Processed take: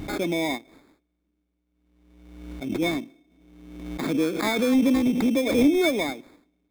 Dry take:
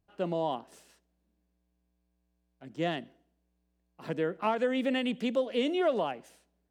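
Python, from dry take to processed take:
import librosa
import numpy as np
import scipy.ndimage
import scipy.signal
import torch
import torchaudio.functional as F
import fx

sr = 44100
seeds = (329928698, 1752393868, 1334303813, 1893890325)

y = fx.graphic_eq(x, sr, hz=(125, 250, 1000, 2000), db=(-4, -7, -11, -10), at=(0.57, 2.81), fade=0.02)
y = fx.sample_hold(y, sr, seeds[0], rate_hz=2900.0, jitter_pct=0)
y = fx.small_body(y, sr, hz=(290.0, 2200.0, 3600.0), ring_ms=35, db=14)
y = fx.pre_swell(y, sr, db_per_s=46.0)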